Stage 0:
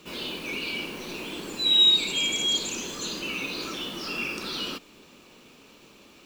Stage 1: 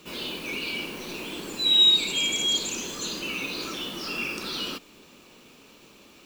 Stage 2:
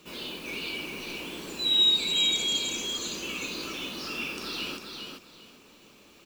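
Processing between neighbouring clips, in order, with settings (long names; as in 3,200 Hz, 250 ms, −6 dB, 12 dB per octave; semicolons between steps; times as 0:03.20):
high-shelf EQ 8,600 Hz +4 dB
repeating echo 401 ms, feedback 21%, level −5 dB; level −4 dB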